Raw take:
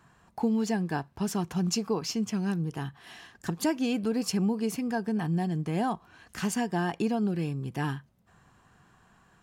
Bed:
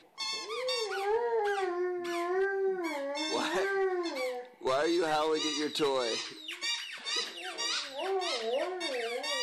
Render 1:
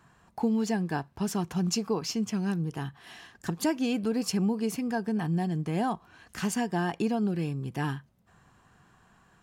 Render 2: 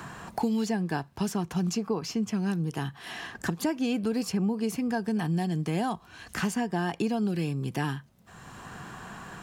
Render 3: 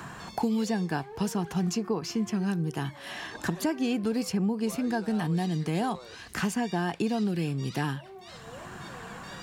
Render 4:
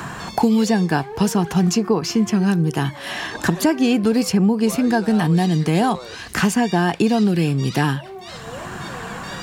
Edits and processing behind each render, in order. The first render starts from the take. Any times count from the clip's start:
no processing that can be heard
multiband upward and downward compressor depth 70%
mix in bed −15 dB
level +11 dB

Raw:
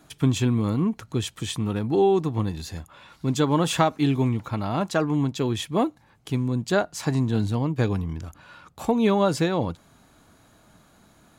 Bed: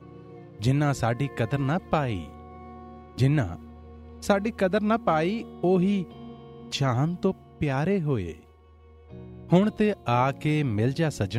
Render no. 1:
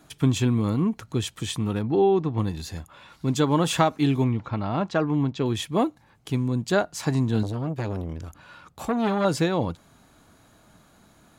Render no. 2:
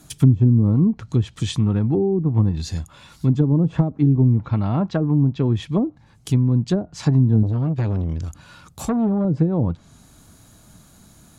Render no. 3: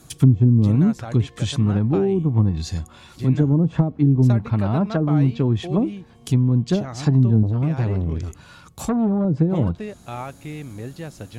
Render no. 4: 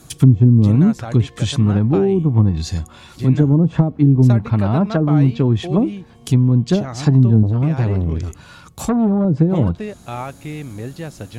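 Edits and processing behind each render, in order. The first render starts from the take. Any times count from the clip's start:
0:01.82–0:02.38: high-frequency loss of the air 160 metres; 0:04.24–0:05.46: high-frequency loss of the air 140 metres; 0:07.43–0:09.25: saturating transformer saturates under 840 Hz
treble cut that deepens with the level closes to 380 Hz, closed at −17.5 dBFS; bass and treble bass +10 dB, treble +12 dB
mix in bed −9 dB
level +4 dB; brickwall limiter −1 dBFS, peak gain reduction 1.5 dB

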